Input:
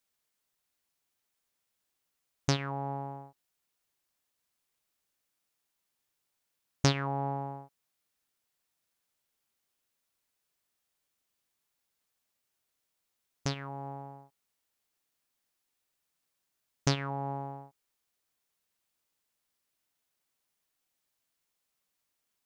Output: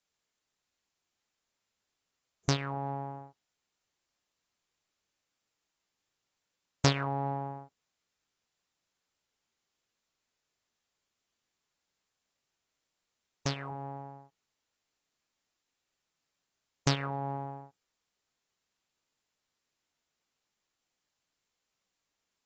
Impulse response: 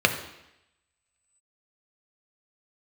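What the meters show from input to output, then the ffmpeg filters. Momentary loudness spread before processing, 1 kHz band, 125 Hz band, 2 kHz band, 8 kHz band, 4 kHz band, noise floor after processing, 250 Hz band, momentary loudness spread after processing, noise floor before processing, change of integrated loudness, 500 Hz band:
16 LU, +0.5 dB, 0.0 dB, +1.0 dB, 0.0 dB, +0.5 dB, below −85 dBFS, 0.0 dB, 16 LU, −83 dBFS, 0.0 dB, 0.0 dB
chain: -ar 24000 -c:a aac -b:a 24k

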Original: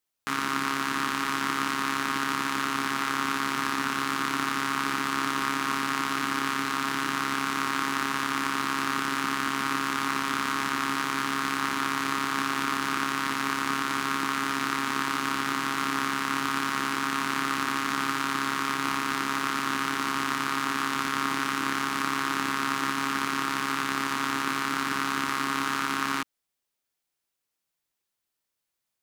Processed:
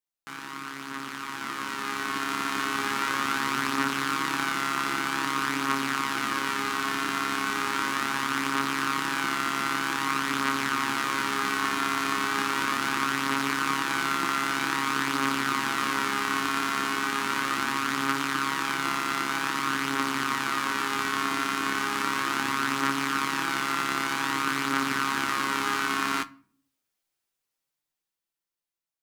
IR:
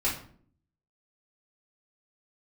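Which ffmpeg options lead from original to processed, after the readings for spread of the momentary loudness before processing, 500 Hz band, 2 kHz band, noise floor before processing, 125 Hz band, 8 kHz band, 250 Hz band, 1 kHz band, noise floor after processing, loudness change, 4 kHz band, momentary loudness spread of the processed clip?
0 LU, +1.5 dB, +1.0 dB, −83 dBFS, −0.5 dB, +0.5 dB, −0.5 dB, 0.0 dB, below −85 dBFS, +0.5 dB, +1.0 dB, 2 LU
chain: -filter_complex "[0:a]flanger=delay=5.8:depth=4.4:regen=45:speed=0.21:shape=sinusoidal,dynaudnorm=framelen=430:gausssize=9:maxgain=13dB,asplit=2[link_01][link_02];[1:a]atrim=start_sample=2205[link_03];[link_02][link_03]afir=irnorm=-1:irlink=0,volume=-22.5dB[link_04];[link_01][link_04]amix=inputs=2:normalize=0,volume=-6.5dB"

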